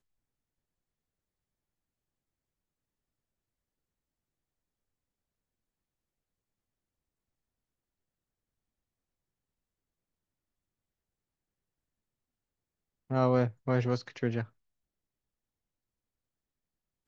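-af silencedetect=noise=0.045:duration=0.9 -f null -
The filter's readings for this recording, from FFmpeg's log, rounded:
silence_start: 0.00
silence_end: 13.12 | silence_duration: 13.12
silence_start: 14.41
silence_end: 17.08 | silence_duration: 2.67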